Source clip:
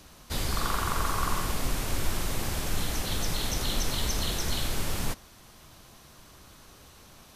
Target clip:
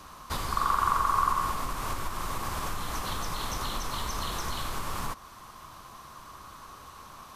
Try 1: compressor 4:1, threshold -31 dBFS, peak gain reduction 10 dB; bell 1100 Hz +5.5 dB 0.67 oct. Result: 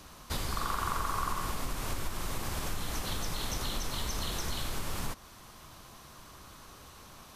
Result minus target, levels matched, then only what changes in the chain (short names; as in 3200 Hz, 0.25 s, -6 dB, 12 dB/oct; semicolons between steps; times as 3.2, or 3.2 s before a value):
1000 Hz band -4.0 dB
change: bell 1100 Hz +16 dB 0.67 oct